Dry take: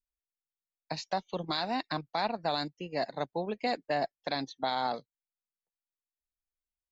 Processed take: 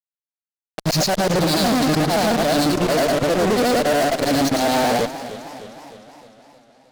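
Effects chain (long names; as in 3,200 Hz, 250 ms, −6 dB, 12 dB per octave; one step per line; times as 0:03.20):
every overlapping window played backwards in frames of 227 ms
flat-topped bell 1,800 Hz −11.5 dB 2.6 octaves
brickwall limiter −35.5 dBFS, peak gain reduction 9.5 dB
fuzz pedal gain 59 dB, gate −54 dBFS
feedback echo with a swinging delay time 308 ms, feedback 60%, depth 144 cents, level −14 dB
level −2.5 dB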